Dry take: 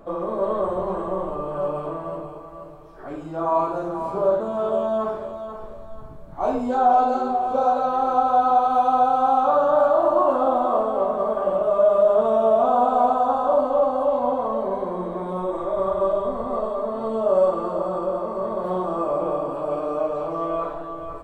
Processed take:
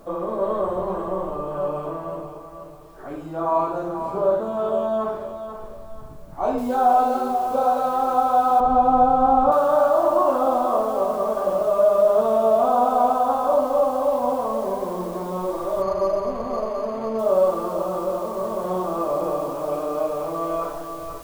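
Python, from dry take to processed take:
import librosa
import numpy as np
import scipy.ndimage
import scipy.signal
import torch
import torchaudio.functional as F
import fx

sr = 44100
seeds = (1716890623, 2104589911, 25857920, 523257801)

y = fx.noise_floor_step(x, sr, seeds[0], at_s=6.58, before_db=-64, after_db=-49, tilt_db=0.0)
y = fx.tilt_eq(y, sr, slope=-4.0, at=(8.6, 9.52))
y = fx.resample_linear(y, sr, factor=8, at=(15.82, 17.19))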